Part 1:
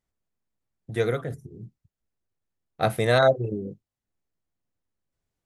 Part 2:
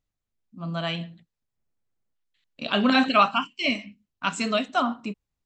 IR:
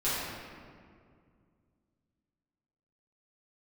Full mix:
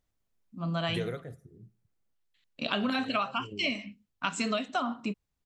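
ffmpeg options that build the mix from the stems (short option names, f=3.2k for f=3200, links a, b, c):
-filter_complex "[0:a]alimiter=limit=-19dB:level=0:latency=1:release=155,volume=-0.5dB,afade=t=out:st=0.99:d=0.22:silence=0.298538,asplit=2[a][b];[b]volume=-22dB[c];[1:a]volume=0dB[d];[c]aecho=0:1:76|152|228|304|380:1|0.39|0.152|0.0593|0.0231[e];[a][d][e]amix=inputs=3:normalize=0,acompressor=threshold=-26dB:ratio=12"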